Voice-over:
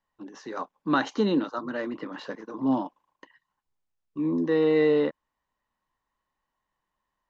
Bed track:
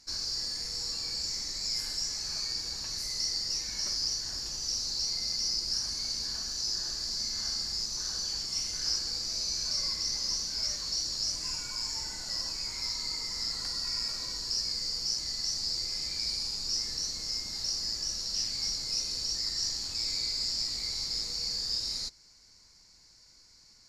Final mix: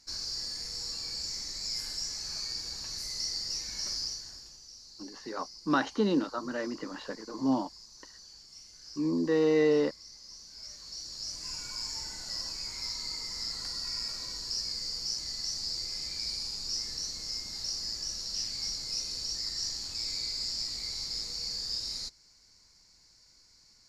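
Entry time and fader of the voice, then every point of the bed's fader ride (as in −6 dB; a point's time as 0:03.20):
4.80 s, −3.0 dB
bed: 0:03.98 −2.5 dB
0:04.69 −18 dB
0:10.23 −18 dB
0:11.66 −2.5 dB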